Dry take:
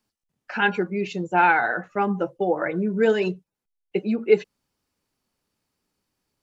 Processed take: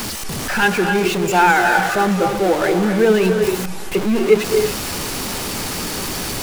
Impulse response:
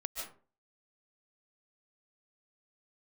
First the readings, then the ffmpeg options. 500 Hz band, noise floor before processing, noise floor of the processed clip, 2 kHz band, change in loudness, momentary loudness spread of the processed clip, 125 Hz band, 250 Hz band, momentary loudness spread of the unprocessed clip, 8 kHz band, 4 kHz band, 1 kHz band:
+7.0 dB, -85 dBFS, -25 dBFS, +7.0 dB, +5.5 dB, 9 LU, +9.5 dB, +8.0 dB, 10 LU, no reading, +15.0 dB, +6.5 dB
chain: -filter_complex "[0:a]aeval=exprs='val(0)+0.5*0.0841*sgn(val(0))':c=same,asplit=2[s0][s1];[1:a]atrim=start_sample=2205,afade=t=out:st=0.26:d=0.01,atrim=end_sample=11907,asetrate=26460,aresample=44100[s2];[s1][s2]afir=irnorm=-1:irlink=0,volume=0.794[s3];[s0][s3]amix=inputs=2:normalize=0,volume=0.75"

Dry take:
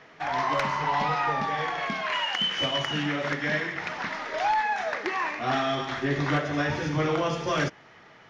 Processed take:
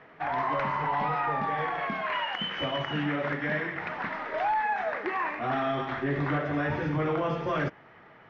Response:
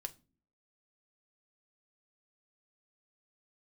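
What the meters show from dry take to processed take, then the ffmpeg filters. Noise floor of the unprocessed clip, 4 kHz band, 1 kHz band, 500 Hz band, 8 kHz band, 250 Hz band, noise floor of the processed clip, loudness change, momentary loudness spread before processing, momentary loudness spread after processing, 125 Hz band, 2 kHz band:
-53 dBFS, -8.0 dB, -1.5 dB, -1.5 dB, no reading, -1.5 dB, -54 dBFS, -2.5 dB, 4 LU, 3 LU, -1.5 dB, -3.0 dB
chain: -af "lowpass=2100,alimiter=limit=0.0891:level=0:latency=1:release=29"

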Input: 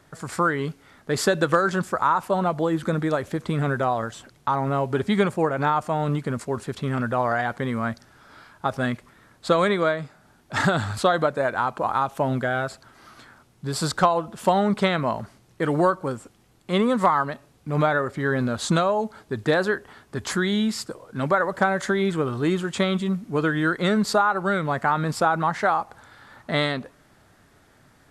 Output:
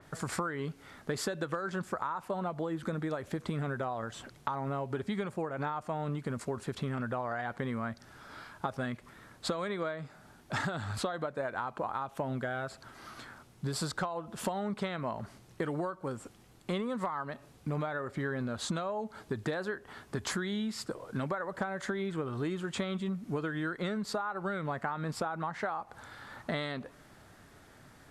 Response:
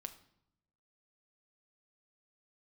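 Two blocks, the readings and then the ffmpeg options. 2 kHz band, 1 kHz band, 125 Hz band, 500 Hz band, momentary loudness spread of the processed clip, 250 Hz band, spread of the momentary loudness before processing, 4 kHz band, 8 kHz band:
-12.5 dB, -13.5 dB, -10.5 dB, -12.5 dB, 8 LU, -11.0 dB, 10 LU, -10.5 dB, -8.5 dB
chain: -af "acompressor=threshold=0.0282:ratio=12,adynamicequalizer=threshold=0.00282:dfrequency=4100:dqfactor=0.7:tfrequency=4100:tqfactor=0.7:attack=5:release=100:ratio=0.375:range=2.5:mode=cutabove:tftype=highshelf"

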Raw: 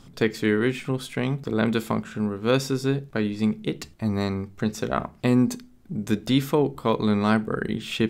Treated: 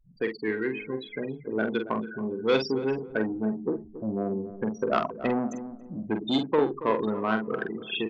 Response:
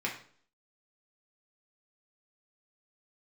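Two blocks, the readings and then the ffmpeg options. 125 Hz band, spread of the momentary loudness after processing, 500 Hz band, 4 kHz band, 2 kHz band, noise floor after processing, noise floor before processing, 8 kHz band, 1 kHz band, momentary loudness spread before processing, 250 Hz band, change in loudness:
-12.0 dB, 8 LU, -1.5 dB, -3.5 dB, -2.5 dB, -47 dBFS, -51 dBFS, under -15 dB, -1.0 dB, 7 LU, -5.5 dB, -4.0 dB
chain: -filter_complex "[0:a]aeval=exprs='val(0)+0.5*0.0251*sgn(val(0))':c=same,afftfilt=real='re*gte(hypot(re,im),0.112)':imag='im*gte(hypot(re,im),0.112)':win_size=1024:overlap=0.75,dynaudnorm=f=530:g=7:m=2.99,asoftclip=type=tanh:threshold=0.299,acrossover=split=270 6200:gain=0.126 1 0.158[s0][s1][s2];[s0][s1][s2]amix=inputs=3:normalize=0,asplit=2[s3][s4];[s4]adelay=46,volume=0.447[s5];[s3][s5]amix=inputs=2:normalize=0,asplit=2[s6][s7];[s7]adelay=278,lowpass=f=1100:p=1,volume=0.224,asplit=2[s8][s9];[s9]adelay=278,lowpass=f=1100:p=1,volume=0.29,asplit=2[s10][s11];[s11]adelay=278,lowpass=f=1100:p=1,volume=0.29[s12];[s8][s10][s12]amix=inputs=3:normalize=0[s13];[s6][s13]amix=inputs=2:normalize=0,aresample=32000,aresample=44100,adynamicequalizer=threshold=0.0178:dfrequency=2100:dqfactor=0.7:tfrequency=2100:tqfactor=0.7:attack=5:release=100:ratio=0.375:range=2:mode=boostabove:tftype=highshelf,volume=0.631"

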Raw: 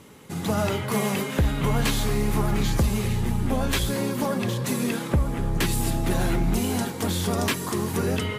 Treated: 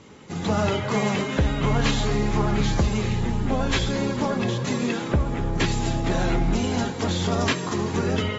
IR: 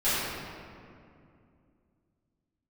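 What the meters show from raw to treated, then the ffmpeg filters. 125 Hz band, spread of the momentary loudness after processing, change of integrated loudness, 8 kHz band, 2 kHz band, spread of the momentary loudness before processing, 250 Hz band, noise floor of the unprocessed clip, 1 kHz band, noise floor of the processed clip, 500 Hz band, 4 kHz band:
+1.0 dB, 3 LU, +1.0 dB, -3.0 dB, +2.0 dB, 3 LU, +1.5 dB, -33 dBFS, +2.5 dB, -31 dBFS, +2.0 dB, +1.5 dB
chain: -filter_complex "[0:a]asplit=2[s0][s1];[s1]highshelf=f=7100:g=11.5[s2];[1:a]atrim=start_sample=2205,asetrate=70560,aresample=44100,highshelf=f=11000:g=8[s3];[s2][s3]afir=irnorm=-1:irlink=0,volume=0.0562[s4];[s0][s4]amix=inputs=2:normalize=0" -ar 44100 -c:a aac -b:a 24k

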